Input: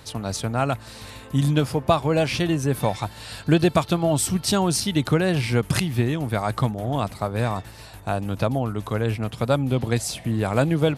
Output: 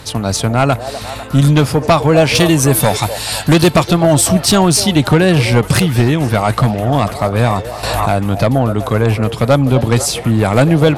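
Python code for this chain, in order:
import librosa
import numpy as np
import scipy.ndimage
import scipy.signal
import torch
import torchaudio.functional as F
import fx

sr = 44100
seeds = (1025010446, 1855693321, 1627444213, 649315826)

p1 = fx.high_shelf(x, sr, hz=4700.0, db=12.0, at=(2.35, 3.7))
p2 = fx.fold_sine(p1, sr, drive_db=8, ceiling_db=-4.0)
p3 = p2 + fx.echo_stepped(p2, sr, ms=249, hz=550.0, octaves=0.7, feedback_pct=70, wet_db=-8.0, dry=0)
y = fx.pre_swell(p3, sr, db_per_s=22.0, at=(7.83, 8.24))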